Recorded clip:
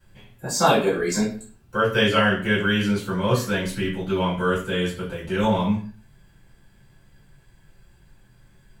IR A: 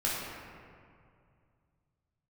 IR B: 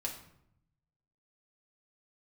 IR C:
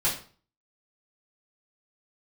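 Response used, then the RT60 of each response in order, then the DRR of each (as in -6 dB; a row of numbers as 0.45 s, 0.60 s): C; 2.3 s, 0.75 s, 0.40 s; -7.0 dB, -1.5 dB, -9.0 dB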